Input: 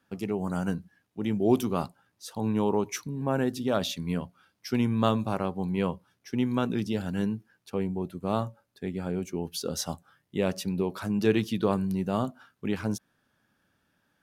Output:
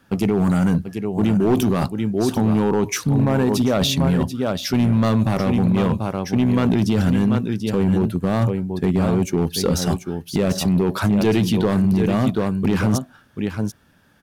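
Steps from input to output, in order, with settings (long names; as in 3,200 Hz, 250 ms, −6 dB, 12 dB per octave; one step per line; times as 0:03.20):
de-essing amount 70%
single-tap delay 737 ms −10 dB
in parallel at 0 dB: compressor whose output falls as the input rises −31 dBFS, ratio −0.5
on the sum: low-shelf EQ 160 Hz +7.5 dB
hard clipping −16.5 dBFS, distortion −15 dB
level +5 dB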